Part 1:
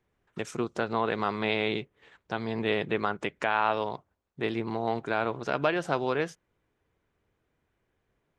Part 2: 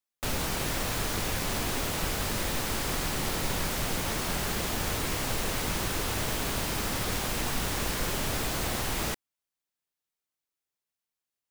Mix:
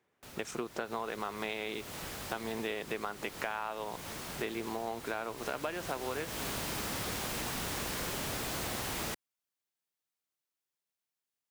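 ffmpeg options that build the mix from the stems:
ffmpeg -i stem1.wav -i stem2.wav -filter_complex "[0:a]highpass=frequency=270:poles=1,volume=2dB[link_01];[1:a]volume=-2dB,afade=type=in:start_time=0.79:duration=0.33:silence=0.375837,afade=type=in:start_time=5.36:duration=0.76:silence=0.375837[link_02];[link_01][link_02]amix=inputs=2:normalize=0,highpass=frequency=100:poles=1,acompressor=threshold=-33dB:ratio=6" out.wav

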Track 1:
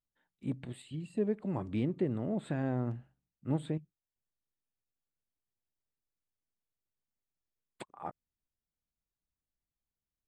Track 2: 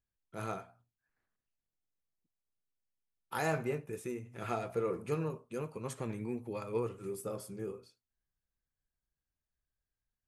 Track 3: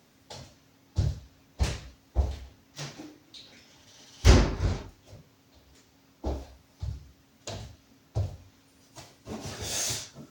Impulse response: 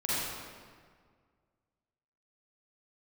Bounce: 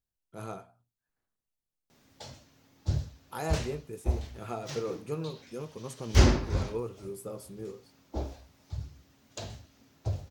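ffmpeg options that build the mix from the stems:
-filter_complex "[1:a]equalizer=frequency=1900:width_type=o:width=1.1:gain=-7,volume=0dB[link_01];[2:a]adelay=1900,volume=-2dB[link_02];[link_01][link_02]amix=inputs=2:normalize=0"

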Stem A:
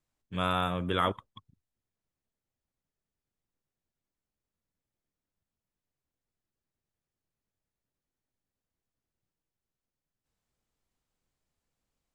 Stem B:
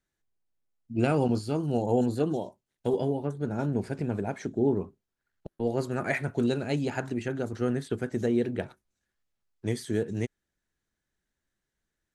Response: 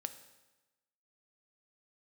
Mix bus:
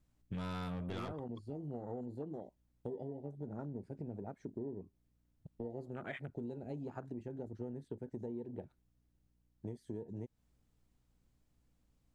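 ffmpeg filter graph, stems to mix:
-filter_complex "[0:a]lowshelf=frequency=370:gain=10,asoftclip=type=tanh:threshold=-26dB,aeval=exprs='val(0)+0.000158*(sin(2*PI*60*n/s)+sin(2*PI*2*60*n/s)/2+sin(2*PI*3*60*n/s)/3+sin(2*PI*4*60*n/s)/4+sin(2*PI*5*60*n/s)/5)':channel_layout=same,volume=0.5dB[link_01];[1:a]afwtdn=0.0251,volume=-6.5dB[link_02];[link_01][link_02]amix=inputs=2:normalize=0,acompressor=threshold=-40dB:ratio=6"

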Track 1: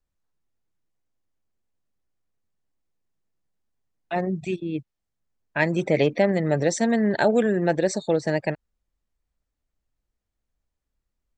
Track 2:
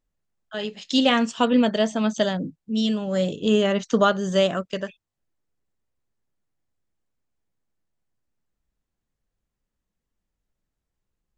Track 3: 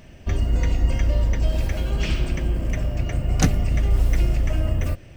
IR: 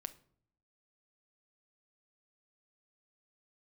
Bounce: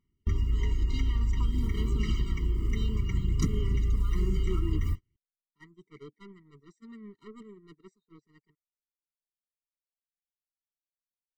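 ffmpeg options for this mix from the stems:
-filter_complex "[0:a]asoftclip=type=tanh:threshold=-20.5dB,volume=-6.5dB[link_01];[1:a]alimiter=limit=-15.5dB:level=0:latency=1,volume=-6dB[link_02];[2:a]volume=1dB[link_03];[link_02][link_03]amix=inputs=2:normalize=0,aphaser=in_gain=1:out_gain=1:delay=2.4:decay=0.34:speed=0.56:type=sinusoidal,acompressor=threshold=-25dB:ratio=4,volume=0dB[link_04];[link_01][link_04]amix=inputs=2:normalize=0,agate=range=-36dB:threshold=-29dB:ratio=16:detection=peak,afftfilt=real='re*eq(mod(floor(b*sr/1024/460),2),0)':imag='im*eq(mod(floor(b*sr/1024/460),2),0)':win_size=1024:overlap=0.75"

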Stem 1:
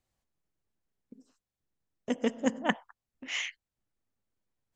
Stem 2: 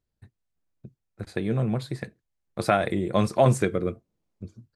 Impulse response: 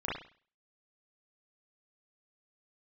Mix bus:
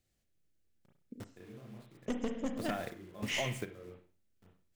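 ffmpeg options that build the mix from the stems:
-filter_complex "[0:a]alimiter=limit=-16dB:level=0:latency=1:release=271,equalizer=frequency=980:width=1.7:gain=-14.5,aeval=exprs='clip(val(0),-1,0.0188)':channel_layout=same,volume=1dB,asplit=3[link_01][link_02][link_03];[link_02]volume=-9dB[link_04];[1:a]acrusher=bits=5:mix=0:aa=0.000001,volume=-13.5dB,asplit=2[link_05][link_06];[link_06]volume=-18dB[link_07];[link_03]apad=whole_len=209477[link_08];[link_05][link_08]sidechaingate=range=-24dB:threshold=-57dB:ratio=16:detection=peak[link_09];[2:a]atrim=start_sample=2205[link_10];[link_04][link_07]amix=inputs=2:normalize=0[link_11];[link_11][link_10]afir=irnorm=-1:irlink=0[link_12];[link_01][link_09][link_12]amix=inputs=3:normalize=0,acompressor=threshold=-31dB:ratio=6"

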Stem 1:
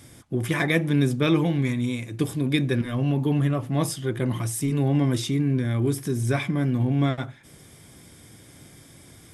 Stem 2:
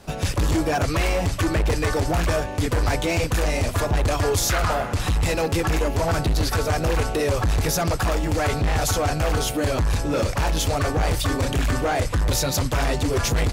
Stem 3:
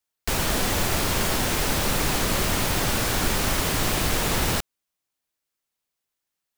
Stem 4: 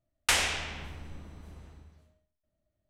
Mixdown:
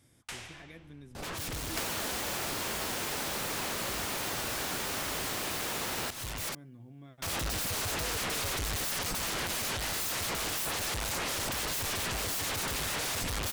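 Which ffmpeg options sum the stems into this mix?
ffmpeg -i stem1.wav -i stem2.wav -i stem3.wav -i stem4.wav -filter_complex "[0:a]acompressor=threshold=-37dB:ratio=2.5,volume=-16.5dB,asplit=2[link_01][link_02];[1:a]aeval=exprs='0.2*sin(PI/2*10*val(0)/0.2)':channel_layout=same,adelay=1150,volume=-12dB,asplit=3[link_03][link_04][link_05];[link_03]atrim=end=6.55,asetpts=PTS-STARTPTS,afade=type=out:start_time=6.546:duration=0.004:curve=hsin[link_06];[link_04]atrim=start=6.55:end=7.22,asetpts=PTS-STARTPTS,volume=0[link_07];[link_05]atrim=start=7.22,asetpts=PTS-STARTPTS,afade=type=in:duration=0.004:curve=hsin[link_08];[link_06][link_07][link_08]concat=n=3:v=0:a=1[link_09];[2:a]highpass=frequency=330:poles=1,adelay=1500,volume=0dB[link_10];[3:a]volume=-17.5dB[link_11];[link_02]apad=whole_len=647221[link_12];[link_09][link_12]sidechaincompress=threshold=-55dB:ratio=8:attack=21:release=367[link_13];[link_01][link_13][link_10][link_11]amix=inputs=4:normalize=0,acompressor=threshold=-32dB:ratio=6" out.wav

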